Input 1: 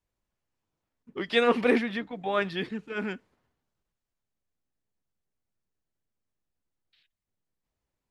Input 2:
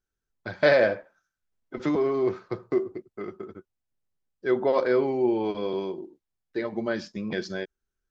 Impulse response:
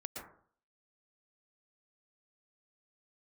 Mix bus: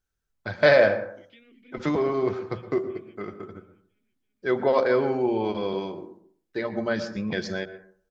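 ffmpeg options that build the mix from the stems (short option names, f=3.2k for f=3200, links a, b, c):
-filter_complex "[0:a]asplit=3[a][b][c];[a]bandpass=f=270:t=q:w=8,volume=0dB[d];[b]bandpass=f=2.29k:t=q:w=8,volume=-6dB[e];[c]bandpass=f=3.01k:t=q:w=8,volume=-9dB[f];[d][e][f]amix=inputs=3:normalize=0,acompressor=threshold=-43dB:ratio=5,volume=-8.5dB,asplit=2[g][h];[h]volume=-12.5dB[i];[1:a]equalizer=f=340:w=2:g=-5,volume=1dB,asplit=2[j][k];[k]volume=-7dB[l];[2:a]atrim=start_sample=2205[m];[l][m]afir=irnorm=-1:irlink=0[n];[i]aecho=0:1:333|666|999|1332|1665|1998|2331|2664:1|0.54|0.292|0.157|0.085|0.0459|0.0248|0.0134[o];[g][j][n][o]amix=inputs=4:normalize=0,equalizer=f=74:w=0.93:g=4,bandreject=f=60:t=h:w=6,bandreject=f=120:t=h:w=6,bandreject=f=180:t=h:w=6,bandreject=f=240:t=h:w=6"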